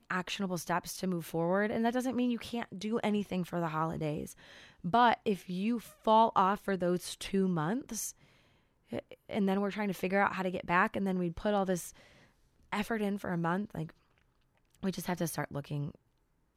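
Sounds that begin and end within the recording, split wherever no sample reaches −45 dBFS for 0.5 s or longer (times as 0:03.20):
0:08.92–0:11.90
0:12.72–0:13.90
0:14.75–0:15.95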